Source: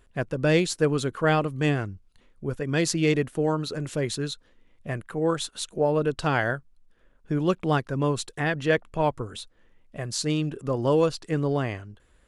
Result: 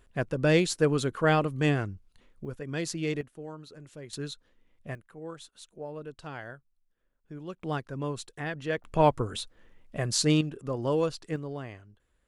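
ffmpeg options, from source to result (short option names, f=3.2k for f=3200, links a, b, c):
-af "asetnsamples=n=441:p=0,asendcmd='2.45 volume volume -8.5dB;3.21 volume volume -17dB;4.13 volume volume -6.5dB;4.95 volume volume -16.5dB;7.62 volume volume -8.5dB;8.84 volume volume 2.5dB;10.41 volume volume -5.5dB;11.36 volume volume -12dB',volume=-1.5dB"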